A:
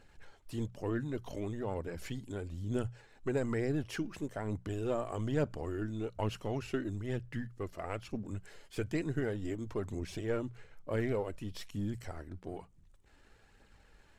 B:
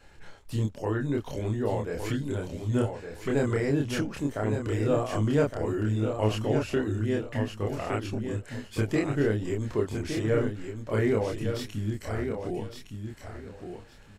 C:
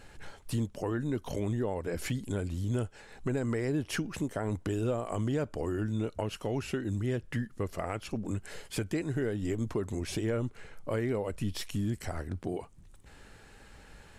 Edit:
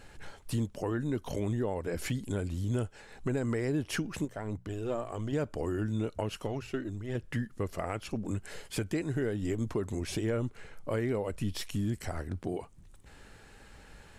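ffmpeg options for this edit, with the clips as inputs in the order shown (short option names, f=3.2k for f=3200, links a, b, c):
-filter_complex "[0:a]asplit=2[a][b];[2:a]asplit=3[c][d][e];[c]atrim=end=4.252[f];[a]atrim=start=4.248:end=5.332[g];[d]atrim=start=5.328:end=6.472[h];[b]atrim=start=6.468:end=7.152[i];[e]atrim=start=7.148[j];[f][g]acrossfade=d=0.004:c1=hsin:c2=hsin[k];[k][h]acrossfade=d=0.004:c1=hsin:c2=hsin[l];[l][i]acrossfade=d=0.004:c1=hsin:c2=hsin[m];[m][j]acrossfade=d=0.004:c1=hsin:c2=hsin"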